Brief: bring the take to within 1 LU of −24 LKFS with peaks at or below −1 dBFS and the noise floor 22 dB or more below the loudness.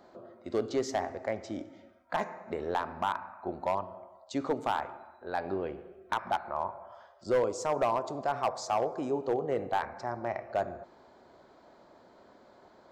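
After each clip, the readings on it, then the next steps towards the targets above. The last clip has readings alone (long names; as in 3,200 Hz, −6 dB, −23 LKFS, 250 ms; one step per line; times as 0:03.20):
share of clipped samples 0.5%; peaks flattened at −21.0 dBFS; integrated loudness −33.5 LKFS; sample peak −21.0 dBFS; target loudness −24.0 LKFS
→ clipped peaks rebuilt −21 dBFS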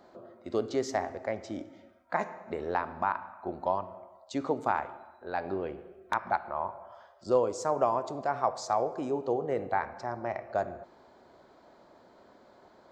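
share of clipped samples 0.0%; integrated loudness −32.5 LKFS; sample peak −13.0 dBFS; target loudness −24.0 LKFS
→ level +8.5 dB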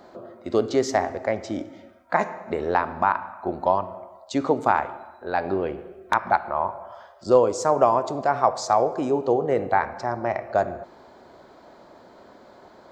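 integrated loudness −24.0 LKFS; sample peak −4.5 dBFS; background noise floor −51 dBFS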